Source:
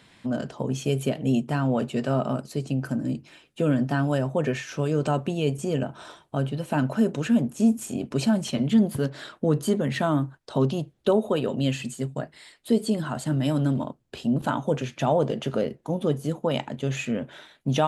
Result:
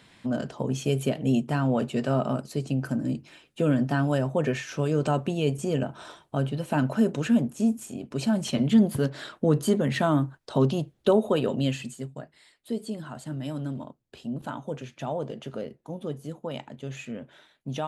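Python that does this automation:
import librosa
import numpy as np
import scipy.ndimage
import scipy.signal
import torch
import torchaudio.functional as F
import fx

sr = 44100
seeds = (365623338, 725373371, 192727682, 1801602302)

y = fx.gain(x, sr, db=fx.line((7.34, -0.5), (8.02, -7.0), (8.5, 0.5), (11.52, 0.5), (12.23, -9.0)))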